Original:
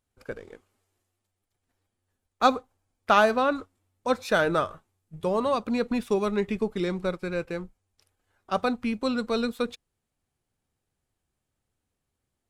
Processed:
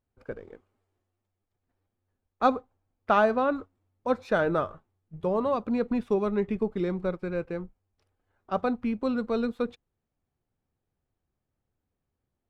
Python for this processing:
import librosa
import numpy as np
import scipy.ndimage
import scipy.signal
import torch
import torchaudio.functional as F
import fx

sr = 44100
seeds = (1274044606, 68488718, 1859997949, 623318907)

y = fx.lowpass(x, sr, hz=1100.0, slope=6)